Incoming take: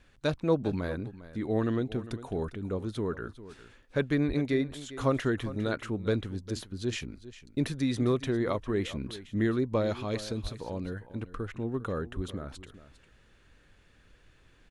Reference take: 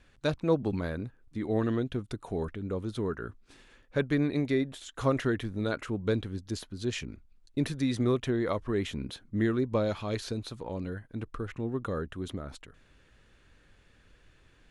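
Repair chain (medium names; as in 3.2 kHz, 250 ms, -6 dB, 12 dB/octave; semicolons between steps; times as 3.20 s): 4.27–4.39 s: high-pass 140 Hz 24 dB/octave; 10.42–10.54 s: high-pass 140 Hz 24 dB/octave; 12.15–12.27 s: high-pass 140 Hz 24 dB/octave; inverse comb 402 ms -15.5 dB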